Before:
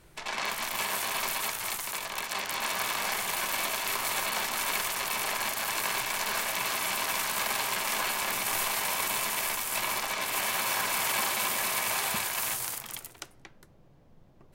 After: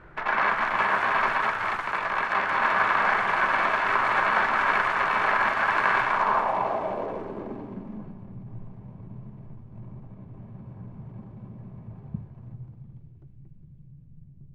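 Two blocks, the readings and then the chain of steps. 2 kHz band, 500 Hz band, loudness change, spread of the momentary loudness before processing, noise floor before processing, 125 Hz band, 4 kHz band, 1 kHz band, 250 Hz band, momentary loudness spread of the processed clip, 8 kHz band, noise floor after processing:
+6.0 dB, +6.5 dB, +5.5 dB, 5 LU, -57 dBFS, +11.0 dB, -9.0 dB, +8.5 dB, +7.0 dB, 21 LU, under -25 dB, -49 dBFS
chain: feedback echo behind a high-pass 817 ms, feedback 57%, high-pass 3.1 kHz, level -8 dB; low-pass sweep 1.5 kHz -> 140 Hz, 6.01–8.30 s; trim +7 dB

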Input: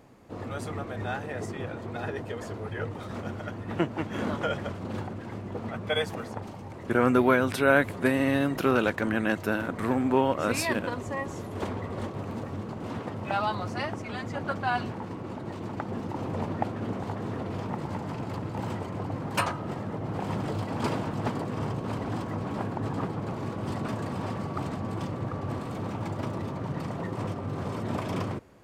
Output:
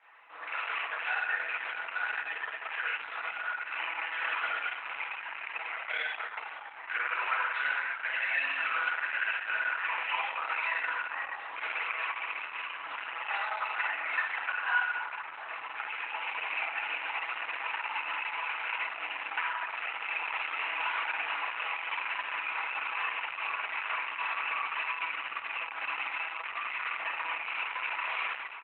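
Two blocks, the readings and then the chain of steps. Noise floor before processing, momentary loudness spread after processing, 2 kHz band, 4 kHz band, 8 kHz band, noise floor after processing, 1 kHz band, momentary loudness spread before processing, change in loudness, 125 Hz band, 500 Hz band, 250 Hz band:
-39 dBFS, 6 LU, +5.0 dB, +1.5 dB, under -35 dB, -43 dBFS, -1.5 dB, 11 LU, -2.0 dB, under -40 dB, -19.0 dB, under -30 dB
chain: rattle on loud lows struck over -32 dBFS, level -26 dBFS; high-pass 960 Hz 24 dB/octave; comb 6.1 ms, depth 50%; compression 10:1, threshold -35 dBFS, peak gain reduction 15.5 dB; four-pole ladder low-pass 2.8 kHz, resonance 40%; reverse bouncing-ball echo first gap 50 ms, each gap 1.5×, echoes 5; FDN reverb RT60 0.89 s, low-frequency decay 1.1×, high-frequency decay 0.85×, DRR -2.5 dB; trim +9 dB; Opus 8 kbps 48 kHz

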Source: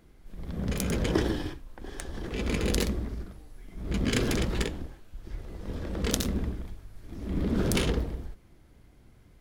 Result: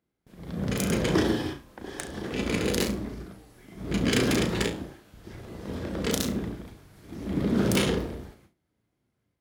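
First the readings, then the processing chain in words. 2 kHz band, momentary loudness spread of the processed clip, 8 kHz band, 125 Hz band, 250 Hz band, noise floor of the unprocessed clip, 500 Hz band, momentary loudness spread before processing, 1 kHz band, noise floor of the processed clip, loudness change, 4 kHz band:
+4.0 dB, 19 LU, +2.0 dB, +0.5 dB, +4.0 dB, -57 dBFS, +4.0 dB, 18 LU, +4.0 dB, -78 dBFS, +3.0 dB, +3.5 dB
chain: level rider gain up to 4 dB; flutter echo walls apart 6 m, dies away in 0.27 s; gate with hold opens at -38 dBFS; high-pass 110 Hz 12 dB/octave; hard clipper -15 dBFS, distortion -19 dB

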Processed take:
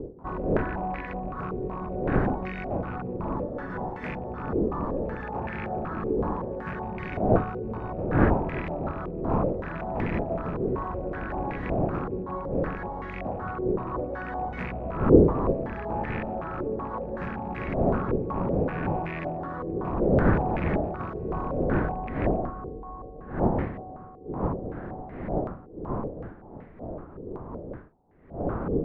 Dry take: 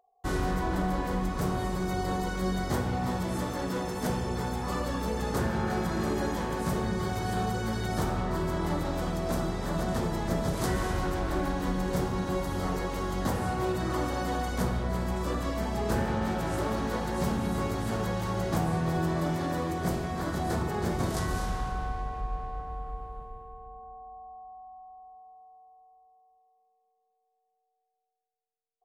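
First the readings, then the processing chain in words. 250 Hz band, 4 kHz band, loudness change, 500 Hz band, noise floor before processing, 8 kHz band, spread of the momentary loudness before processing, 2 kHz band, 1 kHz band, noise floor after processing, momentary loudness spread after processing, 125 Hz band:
+2.5 dB, under -15 dB, +2.0 dB, +5.0 dB, -78 dBFS, under -30 dB, 9 LU, +0.5 dB, +1.0 dB, -44 dBFS, 14 LU, +1.0 dB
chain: rattle on loud lows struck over -29 dBFS, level -24 dBFS; wind noise 320 Hz -25 dBFS; step-sequenced low-pass 5.3 Hz 440–2000 Hz; trim -6.5 dB

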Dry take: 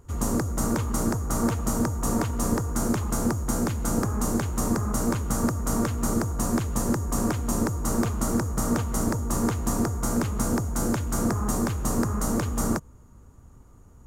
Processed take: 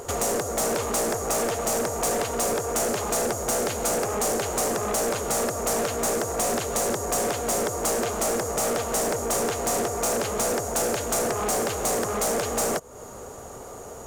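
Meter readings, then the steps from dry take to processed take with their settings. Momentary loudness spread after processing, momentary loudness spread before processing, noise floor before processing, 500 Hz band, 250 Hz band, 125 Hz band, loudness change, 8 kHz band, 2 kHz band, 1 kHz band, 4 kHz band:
1 LU, 1 LU, -50 dBFS, +7.5 dB, -7.5 dB, -10.5 dB, +1.5 dB, +6.0 dB, +5.0 dB, +4.5 dB, +8.0 dB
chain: high-order bell 550 Hz +11.5 dB 1.2 oct; compression 4:1, threshold -33 dBFS, peak gain reduction 15 dB; overdrive pedal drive 23 dB, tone 6.1 kHz, clips at -20 dBFS; treble shelf 3.3 kHz +9 dB; trim +1.5 dB

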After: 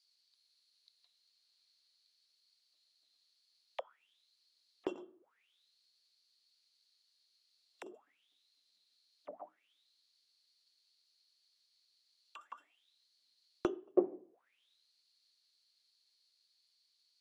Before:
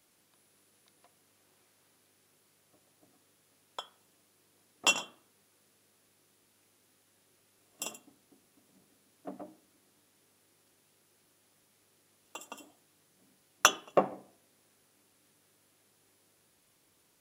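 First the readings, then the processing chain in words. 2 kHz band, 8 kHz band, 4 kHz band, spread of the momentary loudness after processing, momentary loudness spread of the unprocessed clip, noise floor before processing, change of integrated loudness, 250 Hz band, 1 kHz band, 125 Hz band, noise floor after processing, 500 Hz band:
-22.5 dB, -34.0 dB, -24.0 dB, 22 LU, 23 LU, -70 dBFS, -7.5 dB, +2.5 dB, -15.5 dB, -10.0 dB, -78 dBFS, -3.0 dB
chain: auto-wah 360–4800 Hz, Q 12, down, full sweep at -37 dBFS; trim +9.5 dB

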